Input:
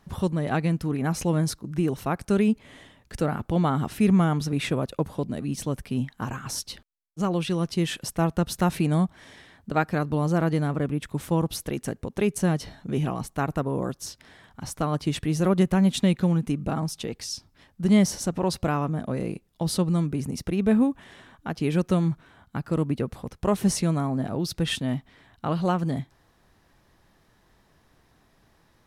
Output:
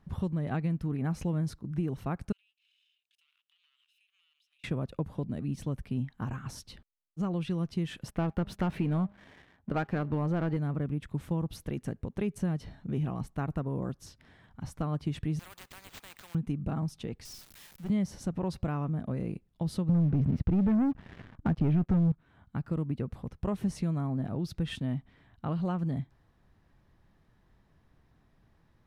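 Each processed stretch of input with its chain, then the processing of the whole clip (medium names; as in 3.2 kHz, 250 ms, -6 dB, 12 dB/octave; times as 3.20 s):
2.32–4.64 s: comb filter that takes the minimum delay 0.76 ms + ladder high-pass 2.8 kHz, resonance 75% + compression 16:1, threshold -57 dBFS
8.08–10.57 s: tone controls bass -6 dB, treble -10 dB + de-hum 202.5 Hz, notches 4 + waveshaping leveller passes 2
15.39–16.35 s: high-pass 830 Hz 24 dB/octave + careless resampling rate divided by 4×, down none, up hold + spectrum-flattening compressor 4:1
17.25–17.90 s: zero-crossing glitches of -25 dBFS + high-pass 430 Hz 6 dB/octave + valve stage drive 27 dB, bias 0.4
19.89–22.12 s: low-pass 2.8 kHz + bass shelf 290 Hz +8.5 dB + waveshaping leveller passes 3
whole clip: tone controls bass +8 dB, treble -8 dB; compression 3:1, threshold -19 dBFS; trim -8.5 dB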